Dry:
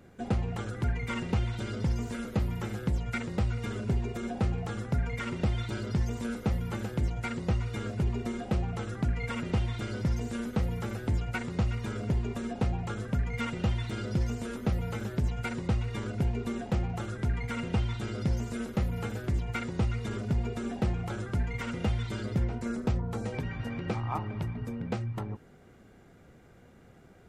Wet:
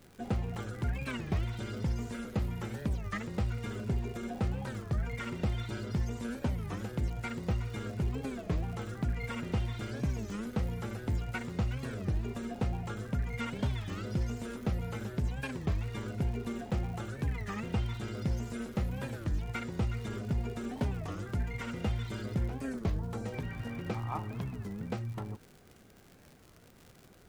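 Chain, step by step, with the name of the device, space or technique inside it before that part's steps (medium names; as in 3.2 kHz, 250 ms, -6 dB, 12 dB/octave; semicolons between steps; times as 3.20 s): warped LP (warped record 33 1/3 rpm, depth 250 cents; crackle 110 per s -40 dBFS; pink noise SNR 33 dB); trim -3.5 dB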